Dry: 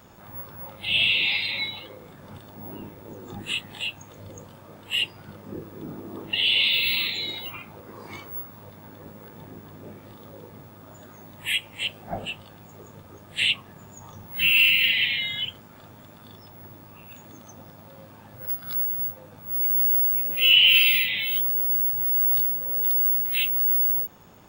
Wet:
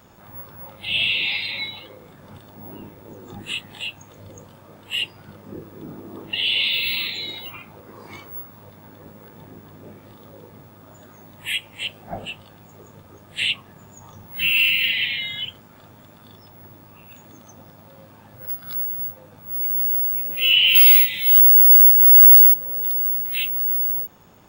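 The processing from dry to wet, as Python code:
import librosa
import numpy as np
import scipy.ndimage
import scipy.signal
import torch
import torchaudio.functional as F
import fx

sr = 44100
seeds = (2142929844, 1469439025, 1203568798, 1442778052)

y = fx.high_shelf_res(x, sr, hz=4600.0, db=13.0, q=1.5, at=(20.75, 22.54))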